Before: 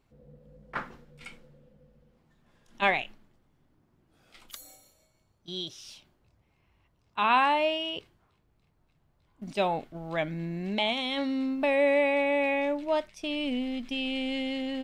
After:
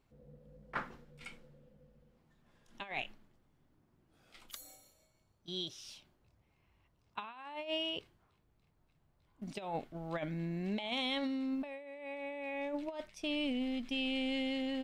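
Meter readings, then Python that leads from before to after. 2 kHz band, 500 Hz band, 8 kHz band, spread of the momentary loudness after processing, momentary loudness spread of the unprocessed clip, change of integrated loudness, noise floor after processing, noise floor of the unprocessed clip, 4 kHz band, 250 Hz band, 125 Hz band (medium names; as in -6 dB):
-12.0 dB, -13.0 dB, -4.5 dB, 16 LU, 22 LU, -10.5 dB, -74 dBFS, -70 dBFS, -6.0 dB, -6.0 dB, -4.5 dB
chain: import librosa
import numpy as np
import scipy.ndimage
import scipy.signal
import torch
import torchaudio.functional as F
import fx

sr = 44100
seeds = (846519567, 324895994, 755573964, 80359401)

y = fx.over_compress(x, sr, threshold_db=-30.0, ratio=-0.5)
y = y * 10.0 ** (-7.0 / 20.0)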